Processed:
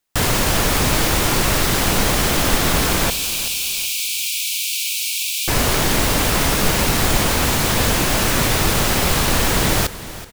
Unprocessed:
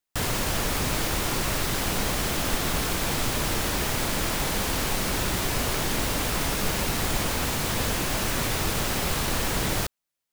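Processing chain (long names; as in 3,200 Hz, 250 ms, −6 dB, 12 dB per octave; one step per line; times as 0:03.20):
0:03.10–0:05.48: Chebyshev high-pass filter 2,300 Hz, order 8
repeating echo 378 ms, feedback 35%, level −15.5 dB
level +9 dB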